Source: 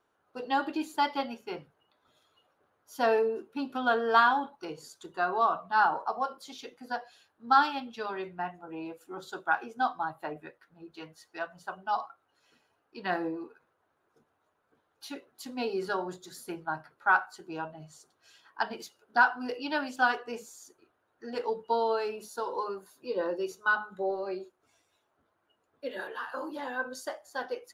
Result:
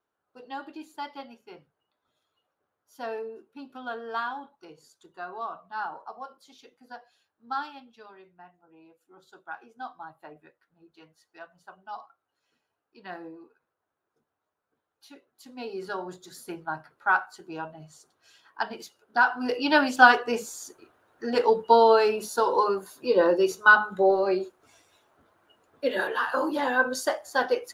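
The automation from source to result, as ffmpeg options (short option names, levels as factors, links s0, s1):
-af "volume=7.5,afade=t=out:st=7.53:d=0.71:silence=0.446684,afade=t=in:st=8.89:d=1.22:silence=0.446684,afade=t=in:st=15.31:d=1.08:silence=0.316228,afade=t=in:st=19.21:d=0.55:silence=0.334965"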